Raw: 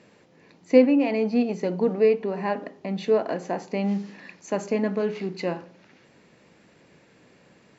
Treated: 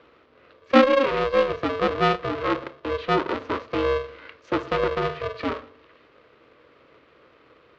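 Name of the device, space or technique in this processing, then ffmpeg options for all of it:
ring modulator pedal into a guitar cabinet: -af "aeval=exprs='val(0)*sgn(sin(2*PI*270*n/s))':channel_layout=same,highpass=91,equalizer=frequency=100:width_type=q:width=4:gain=-9,equalizer=frequency=180:width_type=q:width=4:gain=-9,equalizer=frequency=320:width_type=q:width=4:gain=8,equalizer=frequency=500:width_type=q:width=4:gain=6,equalizer=frequency=780:width_type=q:width=4:gain=-9,equalizer=frequency=1200:width_type=q:width=4:gain=7,lowpass=frequency=3900:width=0.5412,lowpass=frequency=3900:width=1.3066"

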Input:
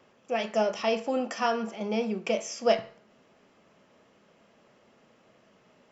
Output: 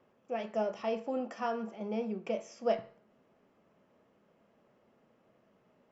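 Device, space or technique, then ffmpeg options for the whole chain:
through cloth: -af "highshelf=frequency=2100:gain=-12.5,volume=-5.5dB"

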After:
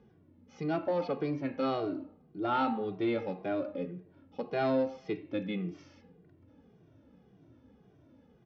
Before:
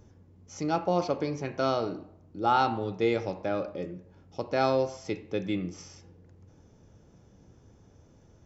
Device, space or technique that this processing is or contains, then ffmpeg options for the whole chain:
barber-pole flanger into a guitar amplifier: -filter_complex "[0:a]asplit=2[link_01][link_02];[link_02]adelay=2,afreqshift=-1.8[link_03];[link_01][link_03]amix=inputs=2:normalize=1,asoftclip=type=tanh:threshold=-21.5dB,highpass=90,equalizer=frequency=93:width_type=q:width=4:gain=-6,equalizer=frequency=270:width_type=q:width=4:gain=7,equalizer=frequency=980:width_type=q:width=4:gain=-3,lowpass=frequency=3800:width=0.5412,lowpass=frequency=3800:width=1.3066"

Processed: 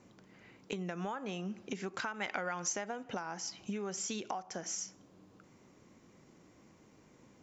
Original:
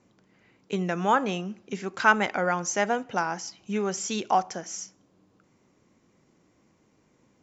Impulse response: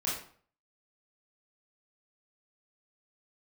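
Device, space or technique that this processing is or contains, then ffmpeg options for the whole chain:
serial compression, peaks first: -filter_complex "[0:a]acompressor=threshold=-35dB:ratio=6,acompressor=threshold=-40dB:ratio=2.5,asettb=1/sr,asplit=3[link_01][link_02][link_03];[link_01]atrim=end=2.144[link_04];[link_02]atrim=start=2.14:end=2.73,asetpts=PTS-STARTPTS,afade=type=in:duration=0.004:curve=qsin,afade=type=out:start_time=0.586:duration=0.004:curve=qsin,equalizer=frequency=2900:width_type=o:width=2.7:gain=7[link_05];[link_03]atrim=start=2.726[link_06];[link_04][link_05]acrossfade=duration=0.004:curve1=hsin:curve2=qsin[link_07];[link_07][link_06]acrossfade=duration=0.004:curve1=qsin:curve2=hsin,volume=3dB"

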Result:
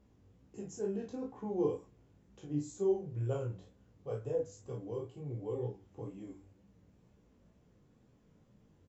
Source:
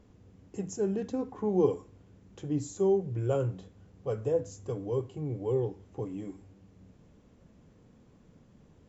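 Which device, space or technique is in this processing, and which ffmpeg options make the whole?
double-tracked vocal: -filter_complex "[0:a]asplit=2[link_01][link_02];[link_02]adelay=34,volume=-4dB[link_03];[link_01][link_03]amix=inputs=2:normalize=0,flanger=delay=15:depth=5.6:speed=2.1,volume=-5.5dB"

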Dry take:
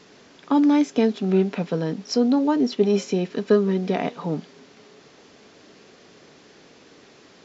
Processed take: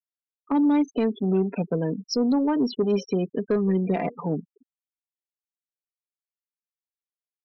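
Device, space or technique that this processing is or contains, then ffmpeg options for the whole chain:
soft clipper into limiter: -filter_complex "[0:a]asettb=1/sr,asplit=3[link_01][link_02][link_03];[link_01]atrim=end=3.554[link_04];[link_02]atrim=start=3.55:end=4.09,asetpts=PTS-STARTPTS,afade=type=in:duration=0.004:curve=qsin,afade=type=out:start_time=0.536:duration=0.004:curve=qsin,aecho=1:1:5.9:0.42,atrim=end_sample=23814[link_05];[link_03]atrim=start=4.086[link_06];[link_04][link_05]acrossfade=duration=0.004:curve1=hsin:curve2=qsin[link_07];[link_07][link_06]acrossfade=duration=0.004:curve1=qsin:curve2=hsin,afftfilt=real='re*gte(hypot(re,im),0.0447)':imag='im*gte(hypot(re,im),0.0447)':win_size=1024:overlap=0.75,asoftclip=type=tanh:threshold=-11dB,alimiter=limit=-15.5dB:level=0:latency=1:release=192"

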